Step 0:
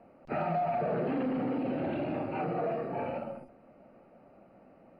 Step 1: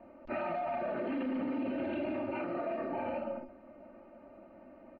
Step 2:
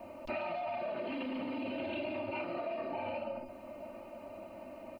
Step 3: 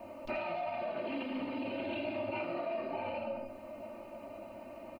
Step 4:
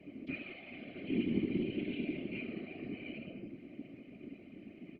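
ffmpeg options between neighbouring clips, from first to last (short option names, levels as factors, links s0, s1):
-filter_complex "[0:a]lowpass=3200,aecho=1:1:3.3:0.95,acrossover=split=2100[s0][s1];[s0]alimiter=level_in=1.68:limit=0.0631:level=0:latency=1:release=68,volume=0.596[s2];[s2][s1]amix=inputs=2:normalize=0"
-af "equalizer=f=100:t=o:w=0.33:g=9,equalizer=f=630:t=o:w=0.33:g=6,equalizer=f=1000:t=o:w=0.33:g=9,acompressor=threshold=0.01:ratio=4,aexciter=amount=4.9:drive=5.7:freq=2400,volume=1.41"
-filter_complex "[0:a]asplit=2[s0][s1];[s1]adelay=18,volume=0.266[s2];[s0][s2]amix=inputs=2:normalize=0,asplit=2[s3][s4];[s4]aecho=0:1:84:0.316[s5];[s3][s5]amix=inputs=2:normalize=0"
-filter_complex "[0:a]asplit=3[s0][s1][s2];[s0]bandpass=f=270:t=q:w=8,volume=1[s3];[s1]bandpass=f=2290:t=q:w=8,volume=0.501[s4];[s2]bandpass=f=3010:t=q:w=8,volume=0.355[s5];[s3][s4][s5]amix=inputs=3:normalize=0,afftfilt=real='hypot(re,im)*cos(2*PI*random(0))':imag='hypot(re,im)*sin(2*PI*random(1))':win_size=512:overlap=0.75,volume=5.31"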